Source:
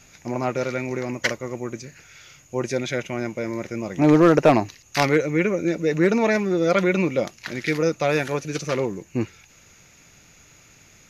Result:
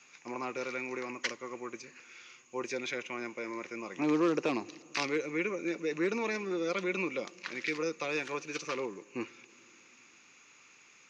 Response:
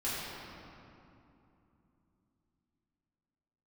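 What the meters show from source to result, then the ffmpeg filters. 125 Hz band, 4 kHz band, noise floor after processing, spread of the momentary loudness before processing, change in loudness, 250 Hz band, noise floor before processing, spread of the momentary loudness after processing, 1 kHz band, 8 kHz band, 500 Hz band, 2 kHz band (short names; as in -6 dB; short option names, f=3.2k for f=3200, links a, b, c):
-21.5 dB, -8.0 dB, -60 dBFS, 13 LU, -12.5 dB, -13.0 dB, -53 dBFS, 11 LU, -12.5 dB, n/a, -13.0 dB, -9.0 dB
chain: -filter_complex "[0:a]acrossover=split=500|3000[a][b][c];[b]acompressor=threshold=-30dB:ratio=6[d];[a][d][c]amix=inputs=3:normalize=0,highpass=340,equalizer=f=640:t=q:w=4:g=-9,equalizer=f=1.1k:t=q:w=4:g=8,equalizer=f=2.5k:t=q:w=4:g=7,lowpass=f=7k:w=0.5412,lowpass=f=7k:w=1.3066,asplit=2[e][f];[1:a]atrim=start_sample=2205[g];[f][g]afir=irnorm=-1:irlink=0,volume=-28dB[h];[e][h]amix=inputs=2:normalize=0,volume=-8dB"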